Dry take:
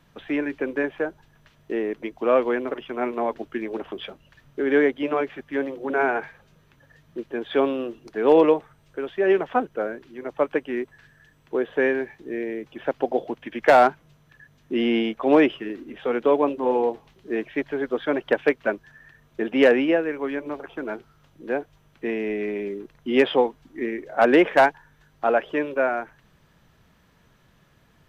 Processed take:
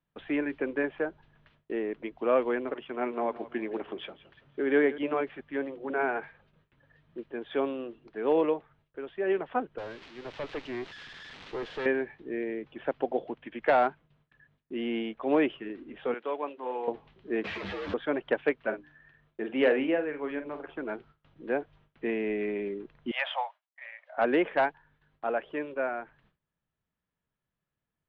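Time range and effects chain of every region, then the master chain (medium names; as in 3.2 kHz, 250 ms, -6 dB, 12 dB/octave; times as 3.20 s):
2.74–4.98 s: high-pass 94 Hz 6 dB/octave + feedback delay 169 ms, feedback 39%, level -17 dB
9.78–11.86 s: zero-crossing glitches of -17 dBFS + valve stage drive 27 dB, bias 0.6
16.14–16.88 s: high-pass 1.4 kHz 6 dB/octave + treble shelf 3.8 kHz -6 dB
17.44–17.94 s: one-bit comparator + frequency shift +53 Hz + three-phase chorus
18.60–20.74 s: hum notches 60/120/180/240/300 Hz + doubling 46 ms -9.5 dB
23.11–24.18 s: steep high-pass 580 Hz 96 dB/octave + expander -55 dBFS
whole clip: gate with hold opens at -47 dBFS; low-pass 3.7 kHz 24 dB/octave; gain riding within 4 dB 2 s; trim -7.5 dB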